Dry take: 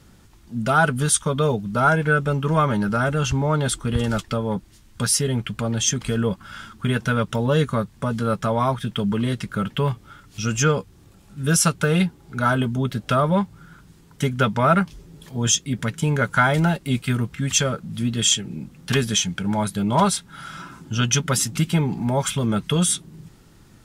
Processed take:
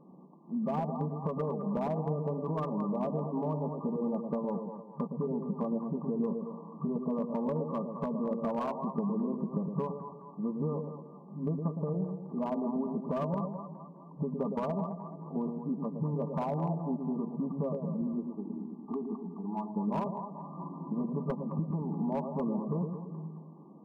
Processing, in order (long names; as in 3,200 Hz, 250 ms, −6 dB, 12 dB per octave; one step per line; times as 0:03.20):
brick-wall band-pass 150–1,200 Hz
downward compressor 12 to 1, threshold −30 dBFS, peak gain reduction 17.5 dB
0:18.01–0:19.73: phaser with its sweep stopped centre 540 Hz, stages 6
echo with a time of its own for lows and highs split 730 Hz, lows 113 ms, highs 213 ms, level −5.5 dB
slew-rate limiting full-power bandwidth 27 Hz